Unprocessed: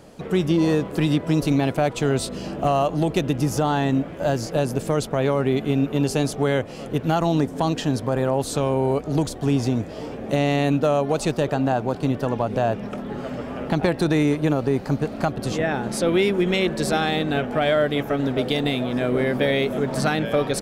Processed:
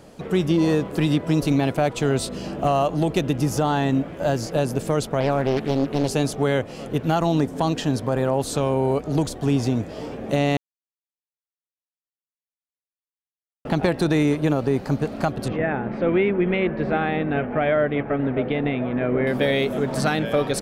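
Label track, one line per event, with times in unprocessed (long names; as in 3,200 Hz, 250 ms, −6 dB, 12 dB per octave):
5.200000	6.110000	highs frequency-modulated by the lows depth 0.73 ms
10.570000	13.650000	silence
15.480000	19.270000	Chebyshev low-pass filter 2,300 Hz, order 3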